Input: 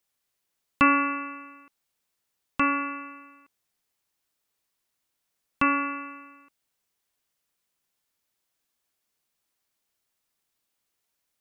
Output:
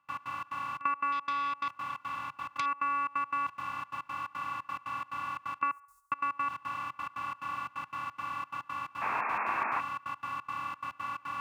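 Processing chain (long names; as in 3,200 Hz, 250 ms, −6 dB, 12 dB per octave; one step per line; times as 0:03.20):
compressor on every frequency bin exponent 0.2
0:05.71–0:06.12: inverse Chebyshev band-stop filter 130–2,600 Hz, stop band 60 dB
gate pattern ".x.xx.xxx" 176 BPM −24 dB
high-pass filter 74 Hz
noise gate −54 dBFS, range −13 dB
downward compressor 6 to 1, threshold −24 dBFS, peak gain reduction 9.5 dB
low-shelf EQ 380 Hz −6 dB
0:09.01–0:09.81: sound drawn into the spectrogram noise 200–2,700 Hz −28 dBFS
octave-band graphic EQ 125/250/500/1,000/2,000 Hz +9/−10/−9/+11/−5 dB
feedback echo with a band-pass in the loop 70 ms, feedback 57%, band-pass 1,200 Hz, level −23.5 dB
0:01.12–0:02.66: saturating transformer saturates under 3,000 Hz
level −6.5 dB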